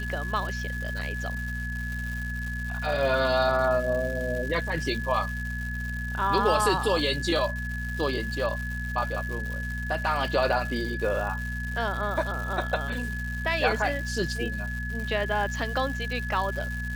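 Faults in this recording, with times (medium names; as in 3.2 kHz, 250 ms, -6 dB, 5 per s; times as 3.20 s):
crackle 330 per s -34 dBFS
hum 60 Hz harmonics 4 -33 dBFS
whine 1.7 kHz -34 dBFS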